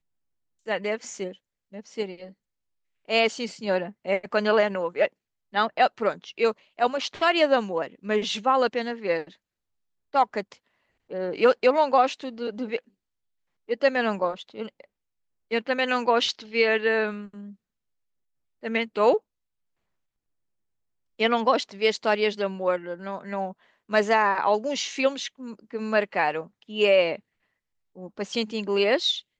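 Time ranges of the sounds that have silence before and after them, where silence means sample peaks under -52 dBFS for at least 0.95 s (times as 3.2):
18.63–19.19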